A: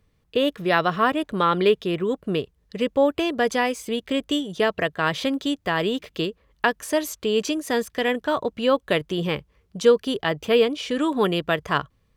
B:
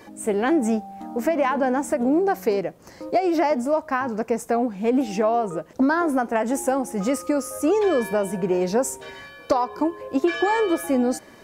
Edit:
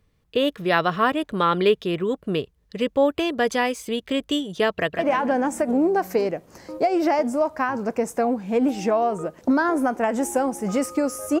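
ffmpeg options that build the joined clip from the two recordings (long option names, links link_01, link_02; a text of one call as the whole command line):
ffmpeg -i cue0.wav -i cue1.wav -filter_complex "[0:a]apad=whole_dur=11.4,atrim=end=11.4,atrim=end=4.992[link_01];[1:a]atrim=start=1.308:end=7.72[link_02];[link_01][link_02]acrossfade=duration=0.004:curve1=hsin:curve2=hsin,asplit=2[link_03][link_04];[link_04]afade=type=in:start_time=4.72:duration=0.01,afade=type=out:start_time=4.99:duration=0.01,aecho=0:1:150|300|450|600|750|900:0.446684|0.223342|0.111671|0.0558354|0.0279177|0.0139589[link_05];[link_03][link_05]amix=inputs=2:normalize=0" out.wav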